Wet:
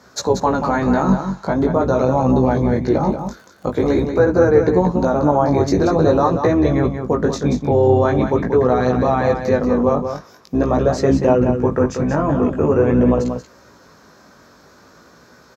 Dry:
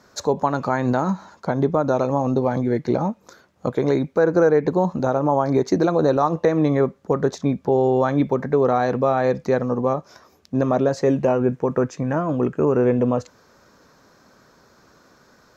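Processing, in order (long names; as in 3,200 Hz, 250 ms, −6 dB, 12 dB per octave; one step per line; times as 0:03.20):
sub-octave generator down 2 octaves, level 0 dB
high-pass filter 110 Hz 12 dB per octave
in parallel at +1 dB: brickwall limiter −16 dBFS, peak gain reduction 11 dB
0:03.07–0:04.02: on the sum: surface crackle 13 per second → 44 per second −34 dBFS
chorus effect 0.45 Hz, delay 15.5 ms, depth 5.5 ms
on a send: single-tap delay 184 ms −7.5 dB
on the sum: level +2 dB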